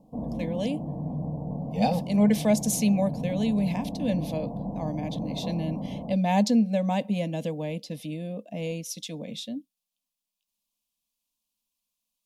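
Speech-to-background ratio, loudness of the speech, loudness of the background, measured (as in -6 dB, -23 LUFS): 6.0 dB, -28.0 LUFS, -34.0 LUFS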